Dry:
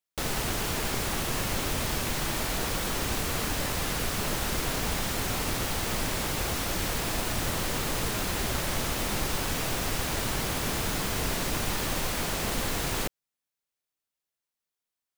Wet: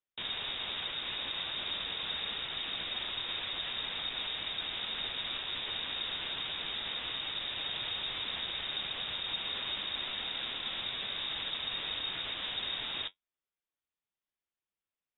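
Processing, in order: peak limiter -24 dBFS, peak gain reduction 8 dB; flange 0.94 Hz, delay 7.7 ms, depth 4.8 ms, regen -49%; frequency inversion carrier 3.7 kHz

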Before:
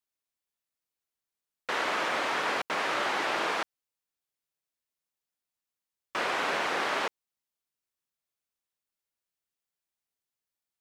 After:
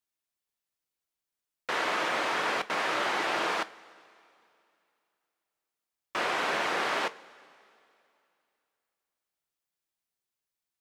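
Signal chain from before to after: two-slope reverb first 0.22 s, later 2.7 s, from -18 dB, DRR 12 dB

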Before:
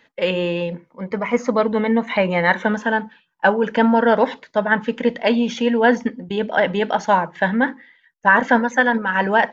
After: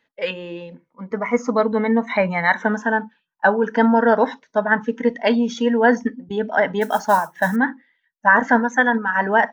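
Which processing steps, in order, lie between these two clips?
6.81–7.56 s: modulation noise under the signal 22 dB; spectral noise reduction 12 dB

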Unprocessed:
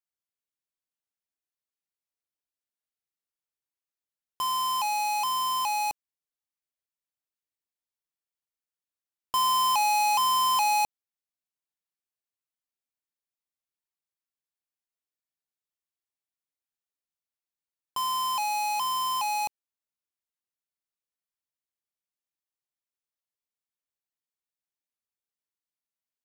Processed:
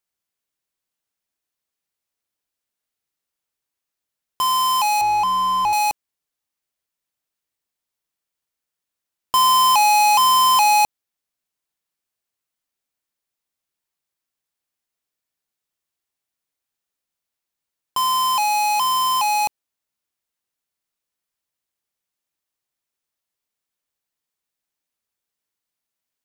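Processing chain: 5.01–5.73 s: tilt EQ -4 dB/octave; trim +9 dB

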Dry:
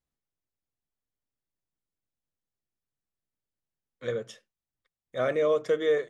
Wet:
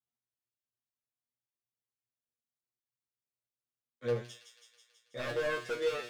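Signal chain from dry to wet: high-pass 67 Hz 24 dB/octave; waveshaping leveller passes 1; wavefolder -22 dBFS; feedback comb 120 Hz, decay 0.25 s, harmonics all, mix 100%; on a send: feedback echo behind a high-pass 163 ms, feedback 69%, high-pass 3.2 kHz, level -5 dB; on the sum: trim +2.5 dB

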